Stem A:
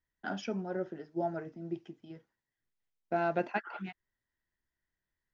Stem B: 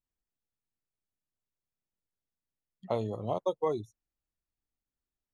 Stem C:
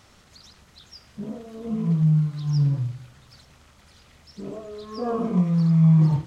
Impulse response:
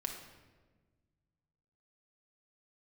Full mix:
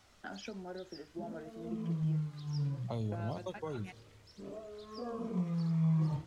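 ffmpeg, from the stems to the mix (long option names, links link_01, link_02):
-filter_complex "[0:a]acompressor=threshold=-36dB:ratio=6,volume=-2.5dB[link_01];[1:a]asubboost=boost=3.5:cutoff=220,volume=-4dB,asplit=2[link_02][link_03];[link_03]volume=-14dB[link_04];[2:a]flanger=delay=1.3:depth=1.2:regen=73:speed=0.63:shape=triangular,volume=-5dB[link_05];[3:a]atrim=start_sample=2205[link_06];[link_04][link_06]afir=irnorm=-1:irlink=0[link_07];[link_01][link_02][link_05][link_07]amix=inputs=4:normalize=0,equalizer=frequency=140:width=1.2:gain=-4,acrossover=split=270|3000[link_08][link_09][link_10];[link_09]acompressor=threshold=-42dB:ratio=3[link_11];[link_08][link_11][link_10]amix=inputs=3:normalize=0"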